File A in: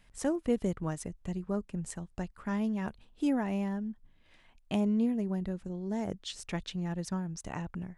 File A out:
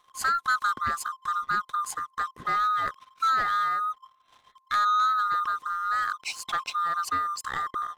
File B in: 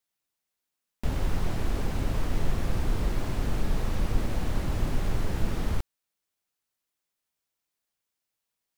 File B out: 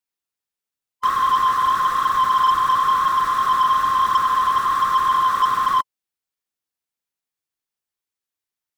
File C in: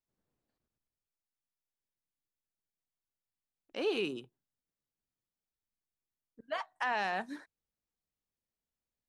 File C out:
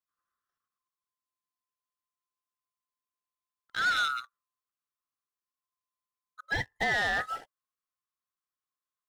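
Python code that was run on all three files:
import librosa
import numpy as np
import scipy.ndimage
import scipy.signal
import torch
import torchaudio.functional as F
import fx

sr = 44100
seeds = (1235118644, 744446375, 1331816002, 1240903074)

y = fx.band_swap(x, sr, width_hz=1000)
y = fx.notch(y, sr, hz=610.0, q=12.0)
y = fx.leveller(y, sr, passes=2)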